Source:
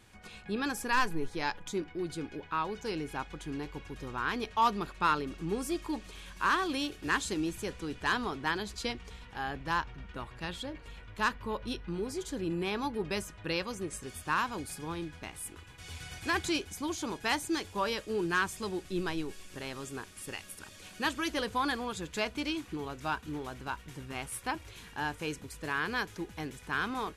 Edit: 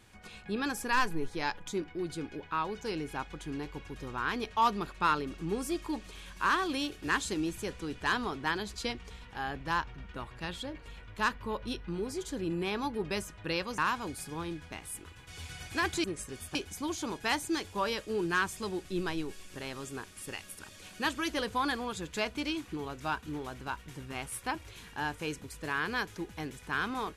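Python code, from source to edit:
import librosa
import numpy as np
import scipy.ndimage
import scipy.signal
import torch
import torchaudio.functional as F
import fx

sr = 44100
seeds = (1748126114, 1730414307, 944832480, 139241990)

y = fx.edit(x, sr, fx.move(start_s=13.78, length_s=0.51, to_s=16.55), tone=tone)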